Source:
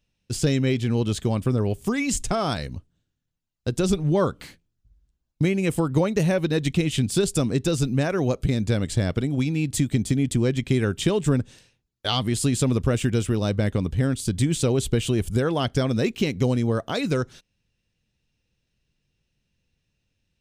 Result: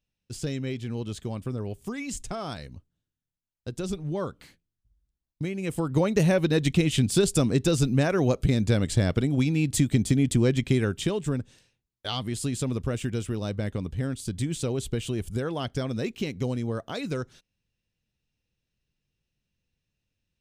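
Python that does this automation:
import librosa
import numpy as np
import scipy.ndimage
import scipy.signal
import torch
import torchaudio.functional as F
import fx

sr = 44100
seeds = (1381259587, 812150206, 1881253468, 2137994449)

y = fx.gain(x, sr, db=fx.line((5.51, -9.5), (6.15, 0.0), (10.61, 0.0), (11.26, -7.0)))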